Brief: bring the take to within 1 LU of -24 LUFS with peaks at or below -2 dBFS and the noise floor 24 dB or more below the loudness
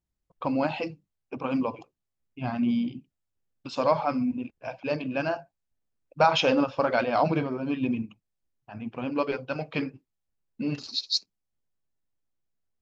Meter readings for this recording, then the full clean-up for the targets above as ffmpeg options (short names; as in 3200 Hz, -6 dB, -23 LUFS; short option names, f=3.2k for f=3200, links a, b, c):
loudness -28.0 LUFS; peak -9.0 dBFS; loudness target -24.0 LUFS
-> -af "volume=4dB"